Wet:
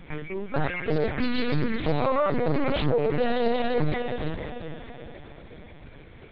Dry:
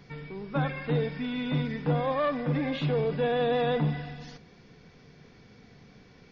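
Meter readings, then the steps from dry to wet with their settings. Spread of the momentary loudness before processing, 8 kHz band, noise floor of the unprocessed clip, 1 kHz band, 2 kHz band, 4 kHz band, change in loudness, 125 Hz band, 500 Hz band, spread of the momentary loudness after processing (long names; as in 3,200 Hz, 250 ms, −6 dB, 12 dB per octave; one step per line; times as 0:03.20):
13 LU, can't be measured, −55 dBFS, +3.0 dB, +4.0 dB, +3.0 dB, +2.0 dB, −0.5 dB, +3.0 dB, 19 LU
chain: brickwall limiter −24 dBFS, peak gain reduction 7.5 dB
reverb reduction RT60 0.65 s
feedback delay with all-pass diffusion 492 ms, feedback 43%, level −6.5 dB
linear-prediction vocoder at 8 kHz pitch kept
highs frequency-modulated by the lows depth 0.44 ms
level +8.5 dB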